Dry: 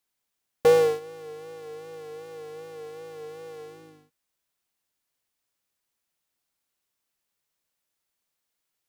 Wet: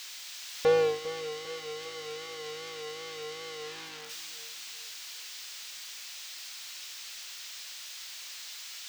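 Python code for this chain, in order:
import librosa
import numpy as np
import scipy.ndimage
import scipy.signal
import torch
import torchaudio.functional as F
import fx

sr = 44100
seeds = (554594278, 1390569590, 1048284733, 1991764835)

y = x + 0.5 * 10.0 ** (-19.0 / 20.0) * np.diff(np.sign(x), prepend=np.sign(x[:1]))
y = fx.high_shelf(y, sr, hz=2100.0, db=9.5)
y = fx.rider(y, sr, range_db=4, speed_s=0.5)
y = fx.air_absorb(y, sr, metres=190.0)
y = fx.echo_feedback(y, sr, ms=401, feedback_pct=47, wet_db=-14.0)
y = y * 10.0 ** (-8.0 / 20.0)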